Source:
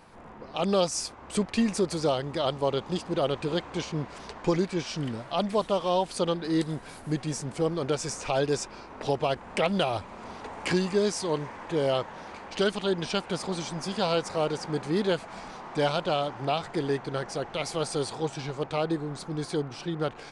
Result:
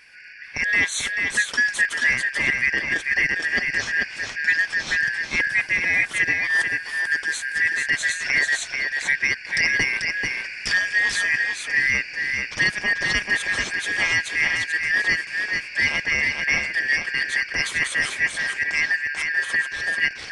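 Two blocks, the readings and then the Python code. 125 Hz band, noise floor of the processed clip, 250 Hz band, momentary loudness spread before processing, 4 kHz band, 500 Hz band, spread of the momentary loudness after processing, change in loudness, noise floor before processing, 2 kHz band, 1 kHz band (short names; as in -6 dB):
-8.5 dB, -36 dBFS, -10.5 dB, 8 LU, +6.0 dB, -14.0 dB, 4 LU, +8.5 dB, -46 dBFS, +22.5 dB, -6.5 dB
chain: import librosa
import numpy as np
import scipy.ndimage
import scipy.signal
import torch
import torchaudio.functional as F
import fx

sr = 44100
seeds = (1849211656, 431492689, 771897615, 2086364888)

p1 = fx.band_shuffle(x, sr, order='3142')
p2 = fx.rider(p1, sr, range_db=3, speed_s=0.5)
p3 = p1 + (p2 * 10.0 ** (0.5 / 20.0))
p4 = p3 + 10.0 ** (-4.5 / 20.0) * np.pad(p3, (int(439 * sr / 1000.0), 0))[:len(p3)]
y = p4 * 10.0 ** (-1.5 / 20.0)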